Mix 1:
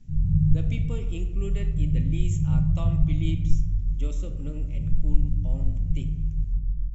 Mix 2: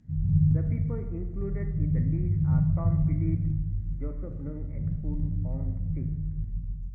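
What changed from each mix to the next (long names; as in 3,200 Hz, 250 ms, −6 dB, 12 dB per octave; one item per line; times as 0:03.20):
speech: add Butterworth low-pass 2,100 Hz 96 dB per octave
master: add high-pass filter 63 Hz 12 dB per octave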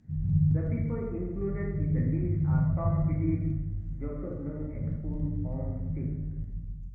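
speech: send +10.5 dB
master: add low-shelf EQ 100 Hz −6 dB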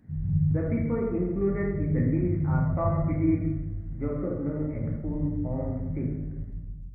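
speech +7.0 dB
master: remove low-pass with resonance 6,700 Hz, resonance Q 2.2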